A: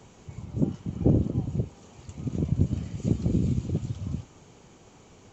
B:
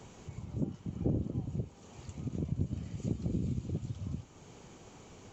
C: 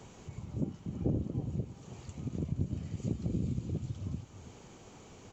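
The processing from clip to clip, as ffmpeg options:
-af "acompressor=threshold=-46dB:ratio=1.5"
-af "aecho=1:1:326:0.224"

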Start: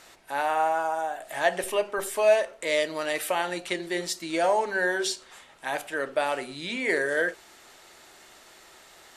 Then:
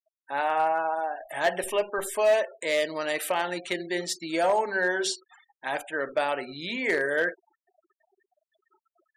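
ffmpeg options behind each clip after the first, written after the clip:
-af "afftfilt=real='re*gte(hypot(re,im),0.01)':imag='im*gte(hypot(re,im),0.01)':win_size=1024:overlap=0.75,asoftclip=type=hard:threshold=-16.5dB"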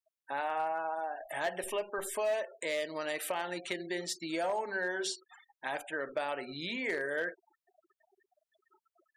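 -af "acompressor=threshold=-35dB:ratio=2,volume=-1.5dB"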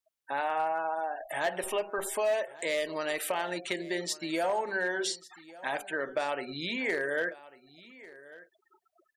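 -af "aecho=1:1:1146:0.106,volume=3.5dB"

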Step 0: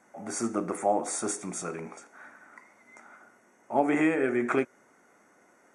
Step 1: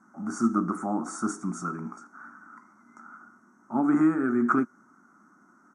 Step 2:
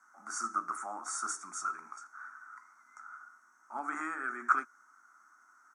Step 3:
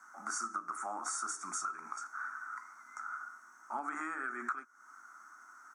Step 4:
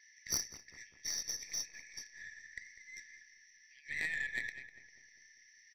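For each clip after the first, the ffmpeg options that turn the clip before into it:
-af "firequalizer=gain_entry='entry(110,0);entry(210,10);entry(330,3);entry(470,-15);entry(1300,10);entry(1900,-13);entry(2800,-24);entry(5400,-4);entry(10000,-11)':delay=0.05:min_phase=1"
-af "highpass=1.4k,volume=2.5dB"
-af "acompressor=threshold=-42dB:ratio=8,volume=7dB"
-filter_complex "[0:a]afftfilt=real='re*between(b*sr/4096,1700,6100)':imag='im*between(b*sr/4096,1700,6100)':win_size=4096:overlap=0.75,aeval=exprs='0.0224*(cos(1*acos(clip(val(0)/0.0224,-1,1)))-cos(1*PI/2))+0.00794*(cos(2*acos(clip(val(0)/0.0224,-1,1)))-cos(2*PI/2))+0.00224*(cos(3*acos(clip(val(0)/0.0224,-1,1)))-cos(3*PI/2))+0.00141*(cos(8*acos(clip(val(0)/0.0224,-1,1)))-cos(8*PI/2))':c=same,asplit=2[a][b];[b]adelay=199,lowpass=f=2.5k:p=1,volume=-12dB,asplit=2[c][d];[d]adelay=199,lowpass=f=2.5k:p=1,volume=0.53,asplit=2[e][f];[f]adelay=199,lowpass=f=2.5k:p=1,volume=0.53,asplit=2[g][h];[h]adelay=199,lowpass=f=2.5k:p=1,volume=0.53,asplit=2[i][j];[j]adelay=199,lowpass=f=2.5k:p=1,volume=0.53,asplit=2[k][l];[l]adelay=199,lowpass=f=2.5k:p=1,volume=0.53[m];[a][c][e][g][i][k][m]amix=inputs=7:normalize=0,volume=13dB"

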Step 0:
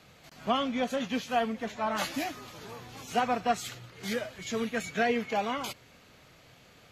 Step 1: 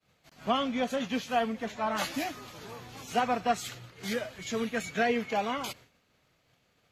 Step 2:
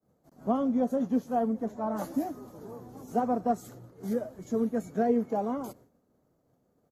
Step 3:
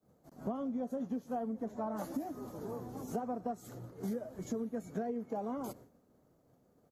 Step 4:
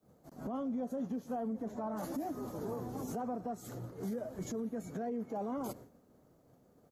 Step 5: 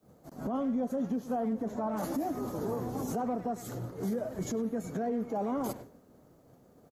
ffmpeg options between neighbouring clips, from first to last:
-af "agate=range=-33dB:threshold=-47dB:ratio=3:detection=peak"
-af "firequalizer=gain_entry='entry(110,0);entry(240,8);entry(2500,-25);entry(6000,-10);entry(12000,-2)':delay=0.05:min_phase=1,volume=-2dB"
-af "acompressor=threshold=-36dB:ratio=12,volume=2dB"
-af "alimiter=level_in=10.5dB:limit=-24dB:level=0:latency=1:release=20,volume=-10.5dB,volume=3.5dB"
-filter_complex "[0:a]asplit=2[a][b];[b]adelay=100,highpass=300,lowpass=3.4k,asoftclip=type=hard:threshold=-39.5dB,volume=-12dB[c];[a][c]amix=inputs=2:normalize=0,volume=5.5dB"

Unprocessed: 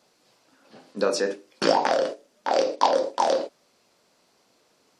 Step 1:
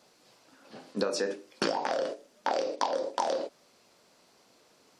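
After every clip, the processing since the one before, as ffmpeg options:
-af "acompressor=threshold=-27dB:ratio=12,volume=1.5dB"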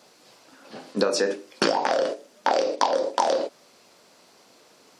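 -af "lowshelf=f=86:g=-10,volume=7.5dB"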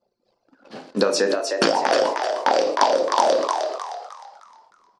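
-filter_complex "[0:a]anlmdn=0.0251,asplit=2[a][b];[b]asplit=5[c][d][e][f][g];[c]adelay=308,afreqshift=89,volume=-5dB[h];[d]adelay=616,afreqshift=178,volume=-13.6dB[i];[e]adelay=924,afreqshift=267,volume=-22.3dB[j];[f]adelay=1232,afreqshift=356,volume=-30.9dB[k];[g]adelay=1540,afreqshift=445,volume=-39.5dB[l];[h][i][j][k][l]amix=inputs=5:normalize=0[m];[a][m]amix=inputs=2:normalize=0,volume=3dB"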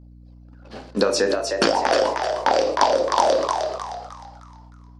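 -af "aeval=exprs='val(0)+0.00631*(sin(2*PI*60*n/s)+sin(2*PI*2*60*n/s)/2+sin(2*PI*3*60*n/s)/3+sin(2*PI*4*60*n/s)/4+sin(2*PI*5*60*n/s)/5)':c=same"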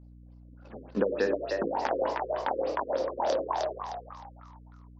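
-af "alimiter=limit=-8dB:level=0:latency=1:release=440,afftfilt=real='re*lt(b*sr/1024,510*pow(7900/510,0.5+0.5*sin(2*PI*3.4*pts/sr)))':imag='im*lt(b*sr/1024,510*pow(7900/510,0.5+0.5*sin(2*PI*3.4*pts/sr)))':win_size=1024:overlap=0.75,volume=-5.5dB"

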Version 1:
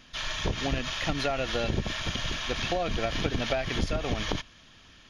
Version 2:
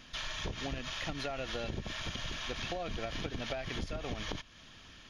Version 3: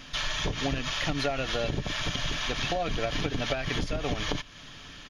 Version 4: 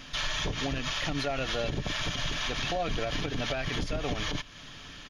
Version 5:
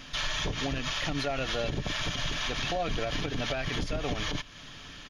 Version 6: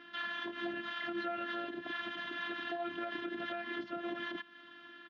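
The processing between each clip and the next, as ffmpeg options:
-af "acompressor=threshold=-39dB:ratio=2.5"
-af "aecho=1:1:6.9:0.35,volume=8dB"
-af "alimiter=limit=-21.5dB:level=0:latency=1:release=27"
-af anull
-af "afftfilt=real='hypot(re,im)*cos(PI*b)':imag='0':win_size=512:overlap=0.75,highpass=f=180:w=0.5412,highpass=f=180:w=1.3066,equalizer=f=190:t=q:w=4:g=7,equalizer=f=430:t=q:w=4:g=-6,equalizer=f=670:t=q:w=4:g=-6,equalizer=f=1k:t=q:w=4:g=-4,equalizer=f=1.6k:t=q:w=4:g=4,equalizer=f=2.4k:t=q:w=4:g=-10,lowpass=f=2.8k:w=0.5412,lowpass=f=2.8k:w=1.3066"

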